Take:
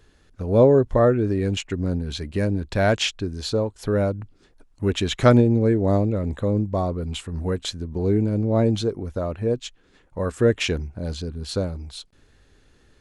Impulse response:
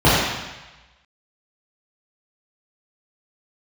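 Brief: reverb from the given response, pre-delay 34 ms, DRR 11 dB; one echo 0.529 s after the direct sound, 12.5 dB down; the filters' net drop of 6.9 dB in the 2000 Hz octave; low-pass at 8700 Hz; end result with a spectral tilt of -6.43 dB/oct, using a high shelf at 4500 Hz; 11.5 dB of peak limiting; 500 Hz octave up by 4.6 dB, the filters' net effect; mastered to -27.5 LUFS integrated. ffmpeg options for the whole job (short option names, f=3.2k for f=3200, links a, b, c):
-filter_complex "[0:a]lowpass=8.7k,equalizer=f=500:t=o:g=6,equalizer=f=2k:t=o:g=-8.5,highshelf=f=4.5k:g=-9,alimiter=limit=-12.5dB:level=0:latency=1,aecho=1:1:529:0.237,asplit=2[a][b];[1:a]atrim=start_sample=2205,adelay=34[c];[b][c]afir=irnorm=-1:irlink=0,volume=-37.5dB[d];[a][d]amix=inputs=2:normalize=0,volume=-5.5dB"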